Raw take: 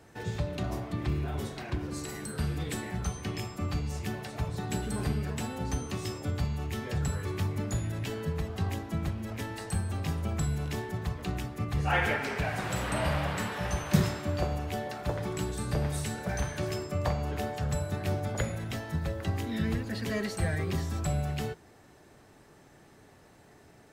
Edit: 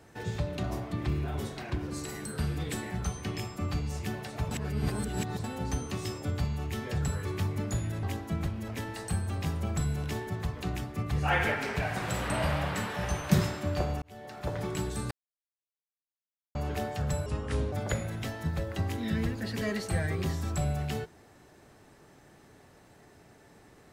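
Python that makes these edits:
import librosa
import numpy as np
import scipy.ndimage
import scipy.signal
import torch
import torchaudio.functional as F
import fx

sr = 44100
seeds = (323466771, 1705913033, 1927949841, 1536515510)

y = fx.edit(x, sr, fx.reverse_span(start_s=4.51, length_s=0.93),
    fx.cut(start_s=8.03, length_s=0.62),
    fx.fade_in_span(start_s=14.64, length_s=0.59),
    fx.silence(start_s=15.73, length_s=1.44),
    fx.speed_span(start_s=17.88, length_s=0.33, speed=0.71), tone=tone)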